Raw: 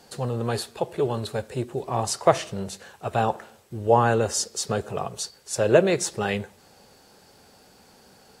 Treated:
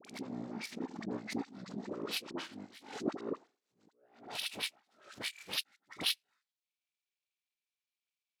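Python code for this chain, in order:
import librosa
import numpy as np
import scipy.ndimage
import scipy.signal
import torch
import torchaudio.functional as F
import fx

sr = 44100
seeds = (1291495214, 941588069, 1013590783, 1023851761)

y = fx.pitch_bins(x, sr, semitones=-11.5)
y = fx.over_compress(y, sr, threshold_db=-28.0, ratio=-0.5)
y = fx.filter_sweep_highpass(y, sr, from_hz=240.0, to_hz=2800.0, start_s=3.08, end_s=6.02, q=1.6)
y = fx.power_curve(y, sr, exponent=2.0)
y = scipy.signal.sosfilt(scipy.signal.butter(4, 110.0, 'highpass', fs=sr, output='sos'), y)
y = fx.high_shelf(y, sr, hz=7600.0, db=5.5)
y = fx.dispersion(y, sr, late='highs', ms=50.0, hz=970.0)
y = fx.pre_swell(y, sr, db_per_s=110.0)
y = y * 10.0 ** (-2.5 / 20.0)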